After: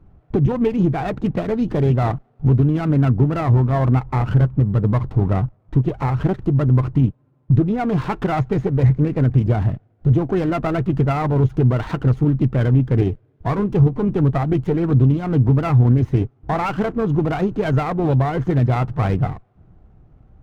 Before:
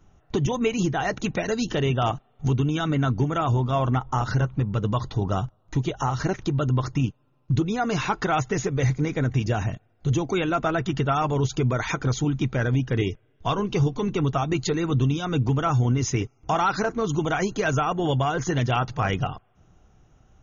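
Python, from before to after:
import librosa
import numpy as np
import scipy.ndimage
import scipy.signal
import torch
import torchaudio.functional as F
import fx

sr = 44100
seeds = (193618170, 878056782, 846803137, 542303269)

y = scipy.signal.sosfilt(scipy.signal.butter(2, 1700.0, 'lowpass', fs=sr, output='sos'), x)
y = fx.low_shelf(y, sr, hz=440.0, db=9.0)
y = fx.running_max(y, sr, window=9)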